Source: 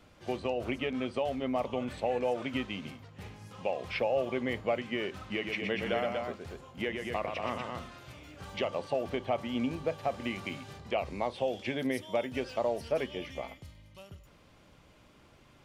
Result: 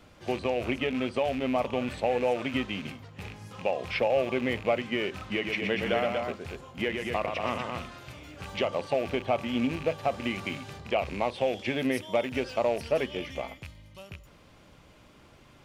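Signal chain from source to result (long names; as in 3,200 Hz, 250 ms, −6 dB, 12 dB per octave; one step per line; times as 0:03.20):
loose part that buzzes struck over −43 dBFS, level −34 dBFS
level +4 dB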